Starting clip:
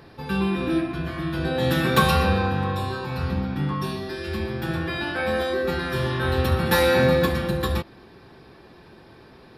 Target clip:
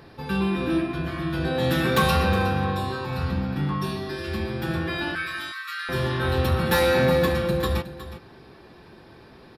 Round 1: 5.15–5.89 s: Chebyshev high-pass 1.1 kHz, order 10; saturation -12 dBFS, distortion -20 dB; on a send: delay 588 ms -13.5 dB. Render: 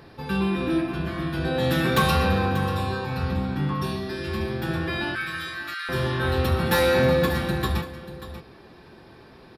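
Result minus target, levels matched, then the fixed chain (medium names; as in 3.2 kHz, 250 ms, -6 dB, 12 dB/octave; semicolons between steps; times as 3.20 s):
echo 223 ms late
5.15–5.89 s: Chebyshev high-pass 1.1 kHz, order 10; saturation -12 dBFS, distortion -20 dB; on a send: delay 365 ms -13.5 dB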